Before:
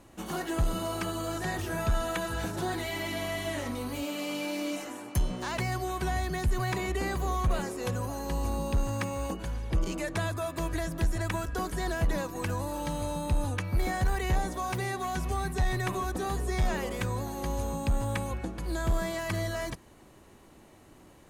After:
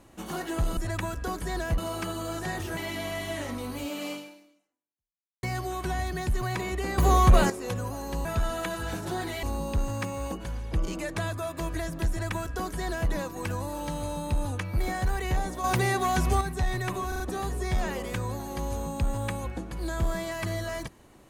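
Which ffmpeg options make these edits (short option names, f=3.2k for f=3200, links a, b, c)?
-filter_complex "[0:a]asplit=14[a][b][c][d][e][f][g][h][i][j][k][l][m][n];[a]atrim=end=0.772[o];[b]atrim=start=11.078:end=12.092[p];[c]atrim=start=0.768:end=1.762[q];[d]atrim=start=2.938:end=5.6,asetpts=PTS-STARTPTS,afade=t=out:st=1.342:d=1.32:c=exp[r];[e]atrim=start=5.6:end=7.152,asetpts=PTS-STARTPTS,afade=t=in:d=0.004:c=hsin[s];[f]atrim=start=7.148:end=7.672,asetpts=PTS-STARTPTS,volume=10dB[t];[g]atrim=start=7.668:end=8.422[u];[h]atrim=start=1.758:end=2.942[v];[i]atrim=start=8.418:end=14.632[w];[j]atrim=start=14.628:end=15.402,asetpts=PTS-STARTPTS,volume=7dB[x];[k]atrim=start=15.398:end=16.112[y];[l]atrim=start=16.068:end=16.112[z];[m]atrim=start=16.068:end=16.112[aa];[n]atrim=start=16.068[ab];[o][p]acrossfade=d=0.004:c1=hsin:c2=hsin[ac];[ac][q]acrossfade=d=0.004:c1=hsin:c2=hsin[ad];[r][s]concat=n=2:v=0:a=1[ae];[ad][ae]acrossfade=d=0.004:c1=hsin:c2=hsin[af];[af][t]acrossfade=d=0.004:c1=hsin:c2=hsin[ag];[ag][u]acrossfade=d=0.004:c1=hsin:c2=hsin[ah];[ah][v]acrossfade=d=0.004:c1=hsin:c2=hsin[ai];[ai][w]acrossfade=d=0.004:c1=hsin:c2=hsin[aj];[aj][x]acrossfade=d=0.004:c1=hsin:c2=hsin[ak];[ak][y]acrossfade=d=0.004:c1=hsin:c2=hsin[al];[al][z]acrossfade=d=0.004:c1=hsin:c2=hsin[am];[am][aa]acrossfade=d=0.004:c1=hsin:c2=hsin[an];[an][ab]acrossfade=d=0.004:c1=hsin:c2=hsin"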